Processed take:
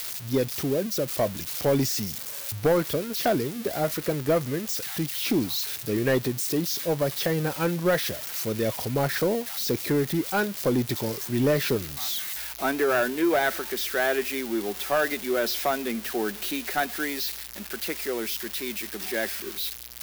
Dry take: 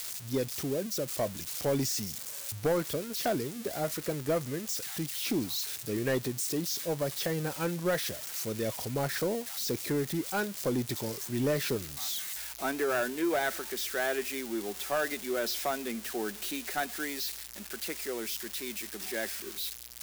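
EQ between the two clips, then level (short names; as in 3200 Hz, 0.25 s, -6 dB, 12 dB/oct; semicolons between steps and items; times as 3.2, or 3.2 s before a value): bell 7800 Hz -5.5 dB 1 oct; +6.5 dB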